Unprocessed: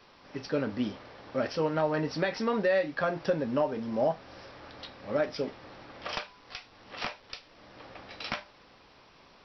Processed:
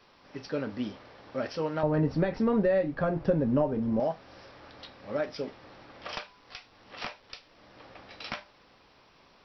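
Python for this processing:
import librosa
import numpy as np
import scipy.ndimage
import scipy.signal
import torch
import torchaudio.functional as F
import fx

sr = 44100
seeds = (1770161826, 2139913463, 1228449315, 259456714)

y = fx.tilt_eq(x, sr, slope=-4.0, at=(1.83, 4.0))
y = y * librosa.db_to_amplitude(-2.5)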